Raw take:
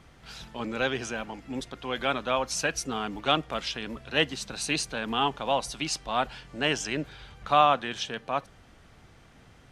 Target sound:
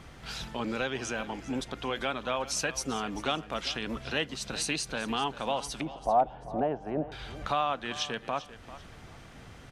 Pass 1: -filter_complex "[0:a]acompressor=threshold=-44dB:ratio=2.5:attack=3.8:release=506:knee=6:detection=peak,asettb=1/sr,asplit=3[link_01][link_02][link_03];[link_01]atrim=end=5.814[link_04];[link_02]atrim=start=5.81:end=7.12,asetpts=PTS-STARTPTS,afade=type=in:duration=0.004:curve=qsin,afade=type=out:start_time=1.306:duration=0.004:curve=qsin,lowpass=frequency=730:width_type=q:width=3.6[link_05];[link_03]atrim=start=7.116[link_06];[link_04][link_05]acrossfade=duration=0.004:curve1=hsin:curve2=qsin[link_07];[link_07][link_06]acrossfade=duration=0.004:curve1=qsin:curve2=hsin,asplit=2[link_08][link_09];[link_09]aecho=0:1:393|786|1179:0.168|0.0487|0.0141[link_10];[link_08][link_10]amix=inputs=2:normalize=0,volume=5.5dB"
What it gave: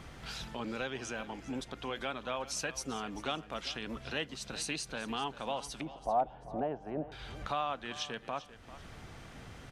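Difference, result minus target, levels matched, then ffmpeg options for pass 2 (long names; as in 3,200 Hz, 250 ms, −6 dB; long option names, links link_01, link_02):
downward compressor: peak gain reduction +5.5 dB
-filter_complex "[0:a]acompressor=threshold=-34.5dB:ratio=2.5:attack=3.8:release=506:knee=6:detection=peak,asettb=1/sr,asplit=3[link_01][link_02][link_03];[link_01]atrim=end=5.814[link_04];[link_02]atrim=start=5.81:end=7.12,asetpts=PTS-STARTPTS,afade=type=in:duration=0.004:curve=qsin,afade=type=out:start_time=1.306:duration=0.004:curve=qsin,lowpass=frequency=730:width_type=q:width=3.6[link_05];[link_03]atrim=start=7.116[link_06];[link_04][link_05]acrossfade=duration=0.004:curve1=hsin:curve2=qsin[link_07];[link_07][link_06]acrossfade=duration=0.004:curve1=qsin:curve2=hsin,asplit=2[link_08][link_09];[link_09]aecho=0:1:393|786|1179:0.168|0.0487|0.0141[link_10];[link_08][link_10]amix=inputs=2:normalize=0,volume=5.5dB"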